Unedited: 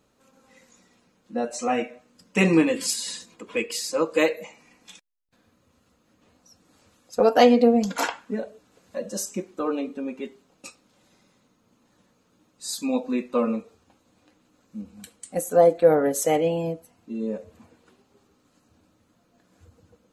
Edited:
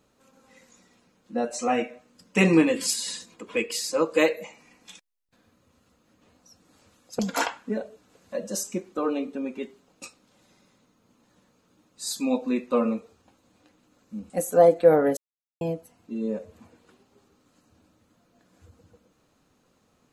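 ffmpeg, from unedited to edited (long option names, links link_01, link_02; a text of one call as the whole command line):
ffmpeg -i in.wav -filter_complex "[0:a]asplit=5[link_01][link_02][link_03][link_04][link_05];[link_01]atrim=end=7.192[link_06];[link_02]atrim=start=7.808:end=14.922[link_07];[link_03]atrim=start=15.288:end=16.16,asetpts=PTS-STARTPTS,afade=type=out:start_time=0.868:duration=0.004:curve=hsin[link_08];[link_04]atrim=start=16.16:end=16.6,asetpts=PTS-STARTPTS,volume=0[link_09];[link_05]atrim=start=16.6,asetpts=PTS-STARTPTS,afade=type=in:duration=0.004:curve=hsin[link_10];[link_06][link_07]acrossfade=duration=0.004:curve1=hsin:curve2=hsin[link_11];[link_08][link_09][link_10]concat=n=3:v=0:a=1[link_12];[link_11][link_12]acrossfade=duration=0.004:curve1=hsin:curve2=hsin" out.wav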